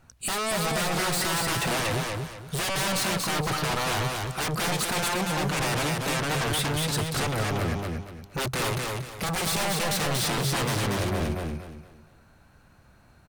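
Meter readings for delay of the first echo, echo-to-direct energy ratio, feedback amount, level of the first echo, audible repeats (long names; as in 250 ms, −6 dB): 235 ms, −2.5 dB, 31%, −3.0 dB, 4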